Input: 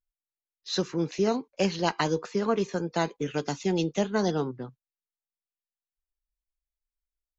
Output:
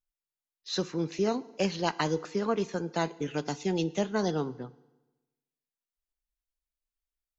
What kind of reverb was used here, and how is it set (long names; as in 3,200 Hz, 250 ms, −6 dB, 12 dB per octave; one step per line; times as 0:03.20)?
feedback delay network reverb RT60 1.1 s, low-frequency decay 1.05×, high-frequency decay 0.95×, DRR 17.5 dB
level −2.5 dB